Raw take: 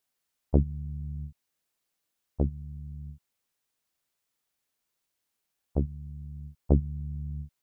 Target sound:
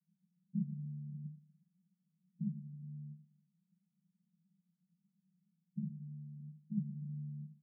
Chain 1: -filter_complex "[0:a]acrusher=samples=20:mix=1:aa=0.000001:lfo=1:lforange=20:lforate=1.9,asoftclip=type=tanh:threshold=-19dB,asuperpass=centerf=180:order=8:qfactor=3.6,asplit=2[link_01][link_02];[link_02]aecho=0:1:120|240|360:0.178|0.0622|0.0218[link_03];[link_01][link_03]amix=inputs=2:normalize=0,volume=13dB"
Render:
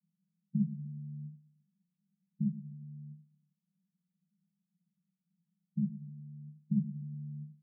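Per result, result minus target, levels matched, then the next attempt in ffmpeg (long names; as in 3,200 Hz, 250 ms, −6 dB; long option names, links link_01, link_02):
sample-and-hold swept by an LFO: distortion −11 dB; soft clipping: distortion −7 dB
-filter_complex "[0:a]acrusher=samples=67:mix=1:aa=0.000001:lfo=1:lforange=67:lforate=1.9,asoftclip=type=tanh:threshold=-19dB,asuperpass=centerf=180:order=8:qfactor=3.6,asplit=2[link_01][link_02];[link_02]aecho=0:1:120|240|360:0.178|0.0622|0.0218[link_03];[link_01][link_03]amix=inputs=2:normalize=0,volume=13dB"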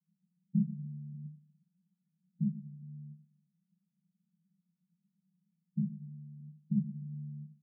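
soft clipping: distortion −6 dB
-filter_complex "[0:a]acrusher=samples=67:mix=1:aa=0.000001:lfo=1:lforange=67:lforate=1.9,asoftclip=type=tanh:threshold=-28dB,asuperpass=centerf=180:order=8:qfactor=3.6,asplit=2[link_01][link_02];[link_02]aecho=0:1:120|240|360:0.178|0.0622|0.0218[link_03];[link_01][link_03]amix=inputs=2:normalize=0,volume=13dB"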